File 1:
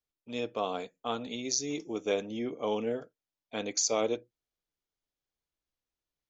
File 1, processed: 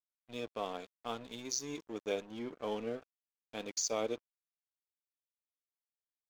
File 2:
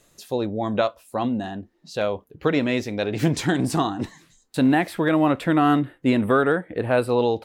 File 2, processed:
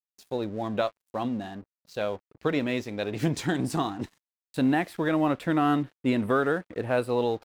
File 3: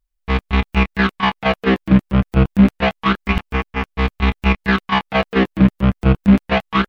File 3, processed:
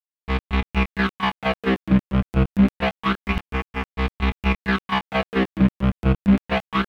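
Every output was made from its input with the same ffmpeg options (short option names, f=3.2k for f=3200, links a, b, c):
-af "aeval=exprs='sgn(val(0))*max(abs(val(0))-0.00631,0)':c=same,volume=-5dB"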